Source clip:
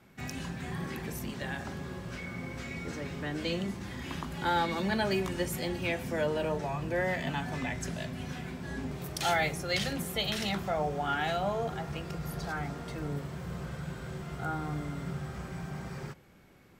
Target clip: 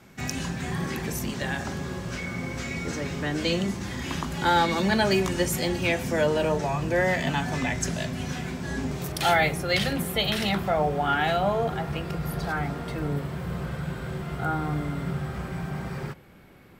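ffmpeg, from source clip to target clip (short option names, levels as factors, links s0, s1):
-af "asetnsamples=n=441:p=0,asendcmd='9.12 equalizer g -6.5',equalizer=f=6400:w=1.5:g=5,volume=2.24"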